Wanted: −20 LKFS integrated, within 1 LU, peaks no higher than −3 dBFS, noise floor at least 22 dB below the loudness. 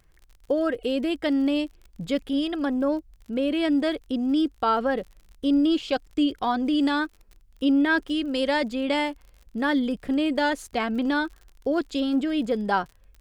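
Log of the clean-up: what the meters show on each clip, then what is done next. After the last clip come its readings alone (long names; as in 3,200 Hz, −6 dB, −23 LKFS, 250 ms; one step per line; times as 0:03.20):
crackle rate 50 per second; integrated loudness −25.5 LKFS; sample peak −11.0 dBFS; target loudness −20.0 LKFS
→ click removal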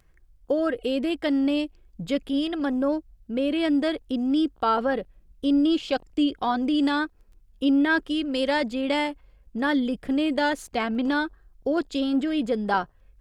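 crackle rate 0.83 per second; integrated loudness −25.5 LKFS; sample peak −11.0 dBFS; target loudness −20.0 LKFS
→ level +5.5 dB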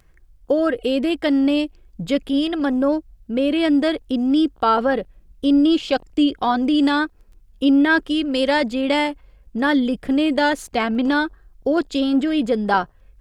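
integrated loudness −20.0 LKFS; sample peak −5.5 dBFS; background noise floor −53 dBFS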